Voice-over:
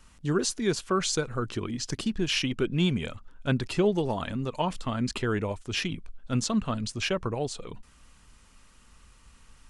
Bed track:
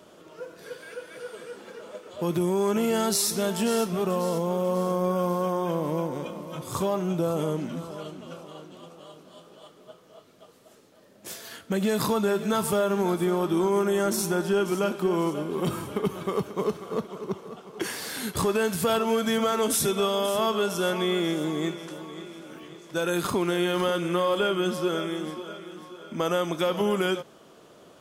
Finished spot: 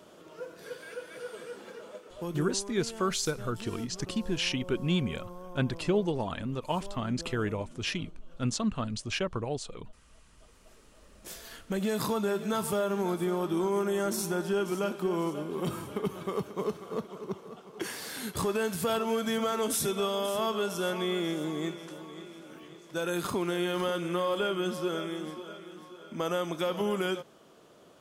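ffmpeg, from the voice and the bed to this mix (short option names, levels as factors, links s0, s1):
-filter_complex "[0:a]adelay=2100,volume=0.708[s0];[1:a]volume=3.98,afade=t=out:st=1.65:d=0.97:silence=0.141254,afade=t=in:st=10.25:d=0.56:silence=0.199526[s1];[s0][s1]amix=inputs=2:normalize=0"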